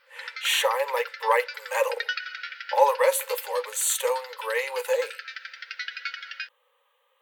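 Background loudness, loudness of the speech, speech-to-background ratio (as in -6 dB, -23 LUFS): -36.5 LUFS, -25.5 LUFS, 11.0 dB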